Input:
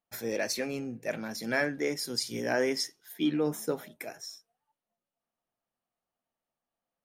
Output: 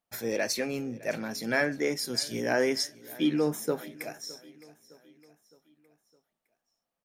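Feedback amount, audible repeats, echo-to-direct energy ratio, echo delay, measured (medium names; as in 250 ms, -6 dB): 50%, 3, -20.0 dB, 612 ms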